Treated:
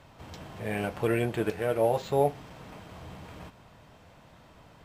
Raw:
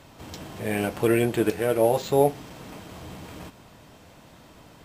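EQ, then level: bell 300 Hz -6 dB 1.2 oct; high shelf 4200 Hz -10.5 dB; -2.0 dB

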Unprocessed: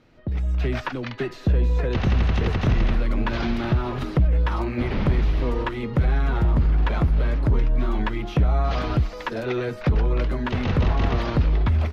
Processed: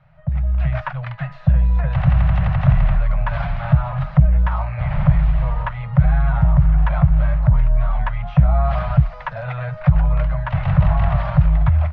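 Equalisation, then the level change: elliptic band-stop 170–610 Hz, stop band 40 dB; LPF 1700 Hz 12 dB/oct; bell 140 Hz +7 dB 0.42 oct; +5.0 dB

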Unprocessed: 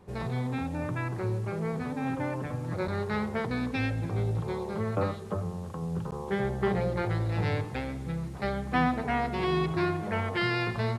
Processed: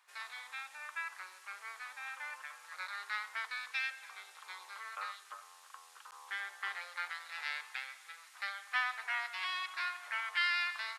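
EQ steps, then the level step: HPF 1300 Hz 24 dB/oct; 0.0 dB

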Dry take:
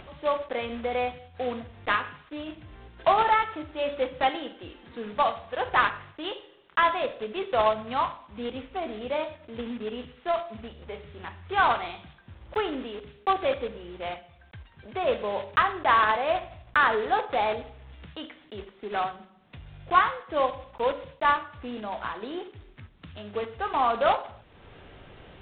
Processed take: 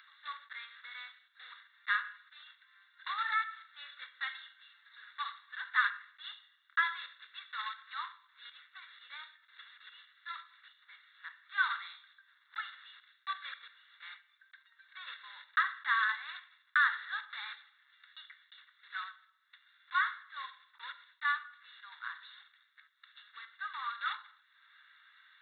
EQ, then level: inverse Chebyshev high-pass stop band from 340 Hz, stop band 70 dB; Butterworth band-stop 3100 Hz, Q 5.8; fixed phaser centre 2500 Hz, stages 6; 0.0 dB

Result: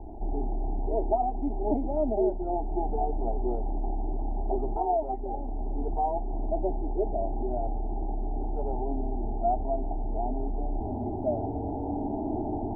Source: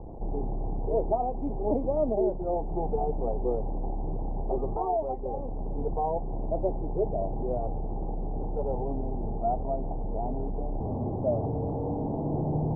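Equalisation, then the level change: fixed phaser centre 760 Hz, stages 8; +2.5 dB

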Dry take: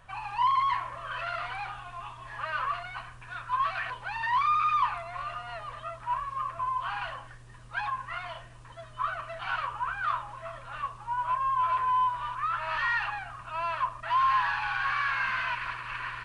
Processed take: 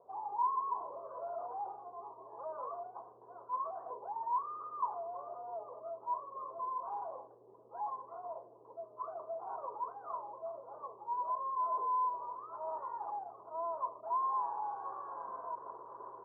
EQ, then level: resonant high-pass 420 Hz, resonance Q 4.9; steep low-pass 960 Hz 48 dB/oct; -3.5 dB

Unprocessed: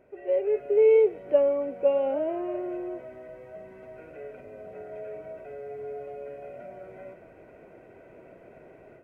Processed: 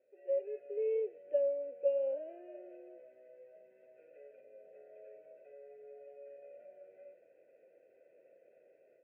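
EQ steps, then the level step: vowel filter e; notch 1900 Hz, Q 20; -6.0 dB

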